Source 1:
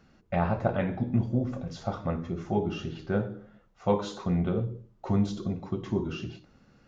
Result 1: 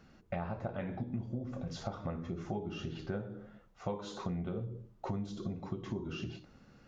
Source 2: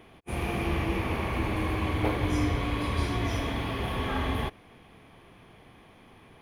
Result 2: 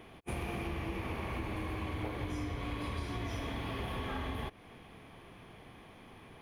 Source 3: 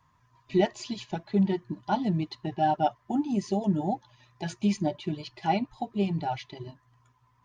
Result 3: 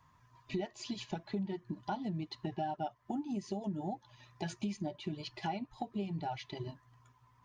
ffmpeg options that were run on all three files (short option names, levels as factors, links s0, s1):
-af "acompressor=threshold=0.0178:ratio=6"